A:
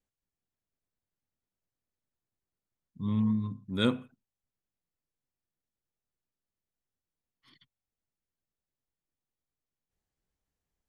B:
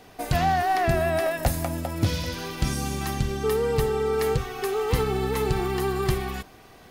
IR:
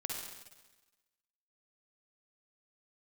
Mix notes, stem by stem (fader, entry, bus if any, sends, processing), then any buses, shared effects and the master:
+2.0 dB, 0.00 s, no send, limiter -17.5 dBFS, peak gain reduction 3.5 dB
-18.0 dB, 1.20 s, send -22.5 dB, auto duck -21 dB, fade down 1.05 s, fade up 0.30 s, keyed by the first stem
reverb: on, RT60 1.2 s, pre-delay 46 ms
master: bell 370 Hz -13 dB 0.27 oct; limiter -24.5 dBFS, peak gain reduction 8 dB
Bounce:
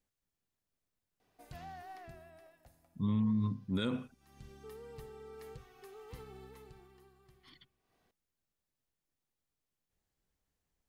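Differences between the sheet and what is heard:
stem B -18.0 dB -> -26.5 dB; master: missing bell 370 Hz -13 dB 0.27 oct

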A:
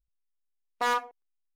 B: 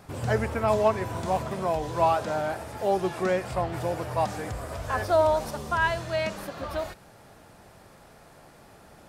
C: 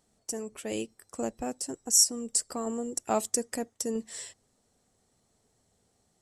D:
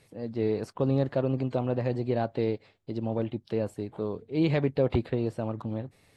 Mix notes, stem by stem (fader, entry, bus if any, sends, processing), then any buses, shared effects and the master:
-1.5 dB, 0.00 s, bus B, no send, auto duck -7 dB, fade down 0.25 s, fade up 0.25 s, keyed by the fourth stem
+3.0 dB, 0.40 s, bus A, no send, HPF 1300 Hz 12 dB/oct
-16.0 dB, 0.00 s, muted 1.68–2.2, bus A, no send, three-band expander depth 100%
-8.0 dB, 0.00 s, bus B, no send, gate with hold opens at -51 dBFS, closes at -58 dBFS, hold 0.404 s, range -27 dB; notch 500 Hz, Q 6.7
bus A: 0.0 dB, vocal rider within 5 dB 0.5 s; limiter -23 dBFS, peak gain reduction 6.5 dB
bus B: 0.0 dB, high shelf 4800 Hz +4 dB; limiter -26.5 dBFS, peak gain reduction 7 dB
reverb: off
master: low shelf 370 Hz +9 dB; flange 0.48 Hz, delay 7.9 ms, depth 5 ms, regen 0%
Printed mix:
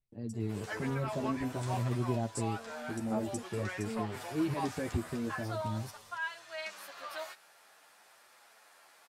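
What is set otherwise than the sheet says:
stem A -1.5 dB -> -10.5 dB; stem B +3.0 dB -> -4.5 dB

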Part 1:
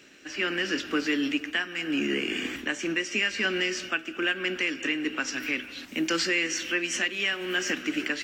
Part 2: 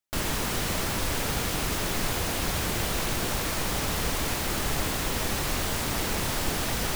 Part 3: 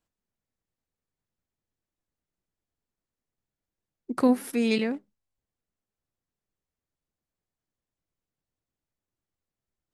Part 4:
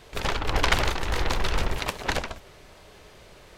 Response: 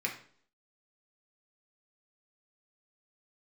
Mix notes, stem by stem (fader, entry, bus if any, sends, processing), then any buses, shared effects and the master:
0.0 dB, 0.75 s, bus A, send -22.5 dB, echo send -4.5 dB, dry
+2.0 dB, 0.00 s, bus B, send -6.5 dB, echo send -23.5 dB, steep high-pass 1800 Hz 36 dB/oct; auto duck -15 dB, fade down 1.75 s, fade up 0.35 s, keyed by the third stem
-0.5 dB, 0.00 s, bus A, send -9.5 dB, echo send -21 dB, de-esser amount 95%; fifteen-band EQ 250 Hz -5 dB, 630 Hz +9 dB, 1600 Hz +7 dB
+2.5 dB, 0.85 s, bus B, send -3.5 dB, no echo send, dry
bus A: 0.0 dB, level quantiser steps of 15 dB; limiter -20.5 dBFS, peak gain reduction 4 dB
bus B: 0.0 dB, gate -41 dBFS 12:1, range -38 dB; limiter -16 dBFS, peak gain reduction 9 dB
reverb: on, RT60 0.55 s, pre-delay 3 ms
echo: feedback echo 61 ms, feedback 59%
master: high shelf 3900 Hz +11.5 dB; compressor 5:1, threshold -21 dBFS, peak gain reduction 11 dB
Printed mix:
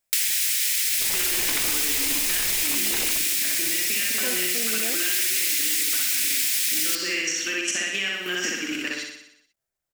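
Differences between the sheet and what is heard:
stem 2 +2.0 dB -> +13.5 dB; reverb return -9.5 dB

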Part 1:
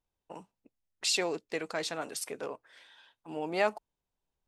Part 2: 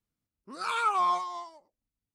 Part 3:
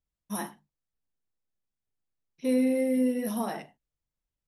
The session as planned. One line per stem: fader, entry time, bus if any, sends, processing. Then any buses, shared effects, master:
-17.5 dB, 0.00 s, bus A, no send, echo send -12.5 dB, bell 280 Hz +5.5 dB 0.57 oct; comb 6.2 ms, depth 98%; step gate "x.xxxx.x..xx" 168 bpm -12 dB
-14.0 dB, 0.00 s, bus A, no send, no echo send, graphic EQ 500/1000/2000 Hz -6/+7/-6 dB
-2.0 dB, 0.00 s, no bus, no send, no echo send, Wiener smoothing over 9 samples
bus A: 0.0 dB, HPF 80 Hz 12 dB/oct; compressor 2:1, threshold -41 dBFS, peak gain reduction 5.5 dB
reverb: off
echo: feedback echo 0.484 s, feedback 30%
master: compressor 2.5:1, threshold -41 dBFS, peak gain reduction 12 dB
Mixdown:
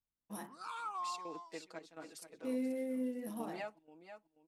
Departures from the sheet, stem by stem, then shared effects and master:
stem 3 -2.0 dB -> -12.0 dB; master: missing compressor 2.5:1, threshold -41 dBFS, peak gain reduction 12 dB

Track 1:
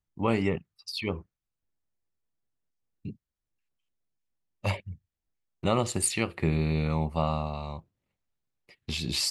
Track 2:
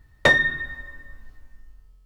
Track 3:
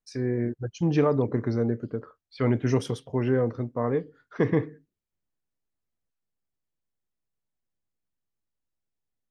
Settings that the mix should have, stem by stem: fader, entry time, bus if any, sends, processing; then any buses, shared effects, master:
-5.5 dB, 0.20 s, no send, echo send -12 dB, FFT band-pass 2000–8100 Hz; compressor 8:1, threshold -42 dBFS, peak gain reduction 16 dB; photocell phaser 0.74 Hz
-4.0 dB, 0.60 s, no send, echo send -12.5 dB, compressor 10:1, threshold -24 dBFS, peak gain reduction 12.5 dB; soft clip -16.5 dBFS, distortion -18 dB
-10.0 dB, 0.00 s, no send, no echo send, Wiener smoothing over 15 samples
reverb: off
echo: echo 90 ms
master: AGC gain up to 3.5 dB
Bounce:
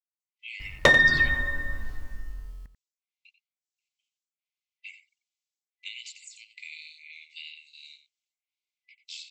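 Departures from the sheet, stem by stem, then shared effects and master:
stem 1 -5.5 dB -> +4.0 dB; stem 2 -4.0 dB -> +7.5 dB; stem 3: muted

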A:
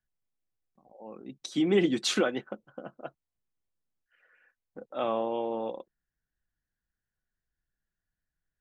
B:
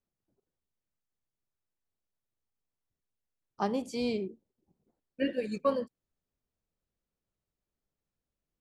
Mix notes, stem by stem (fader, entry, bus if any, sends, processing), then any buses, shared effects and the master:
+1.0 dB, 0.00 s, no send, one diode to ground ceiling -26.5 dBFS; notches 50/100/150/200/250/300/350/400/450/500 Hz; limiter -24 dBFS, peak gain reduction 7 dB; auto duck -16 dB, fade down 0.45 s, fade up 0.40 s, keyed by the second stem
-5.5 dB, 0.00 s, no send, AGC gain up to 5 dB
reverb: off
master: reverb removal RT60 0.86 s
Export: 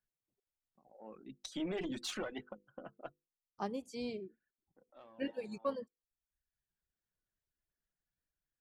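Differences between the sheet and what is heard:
stem A +1.0 dB -> -5.5 dB; stem B -5.5 dB -> -13.0 dB

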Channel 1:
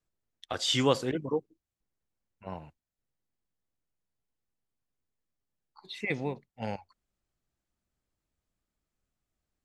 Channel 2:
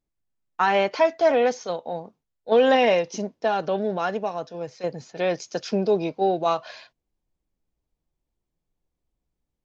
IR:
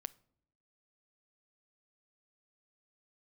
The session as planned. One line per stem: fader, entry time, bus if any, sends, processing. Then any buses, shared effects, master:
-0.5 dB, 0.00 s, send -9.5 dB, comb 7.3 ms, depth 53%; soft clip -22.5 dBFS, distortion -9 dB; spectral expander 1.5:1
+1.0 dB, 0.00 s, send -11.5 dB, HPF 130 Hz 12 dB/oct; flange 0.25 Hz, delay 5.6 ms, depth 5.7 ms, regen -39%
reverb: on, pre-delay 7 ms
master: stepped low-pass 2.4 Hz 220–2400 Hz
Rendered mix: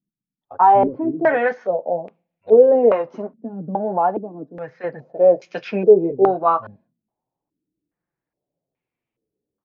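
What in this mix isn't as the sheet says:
stem 1: send off; reverb return +7.5 dB

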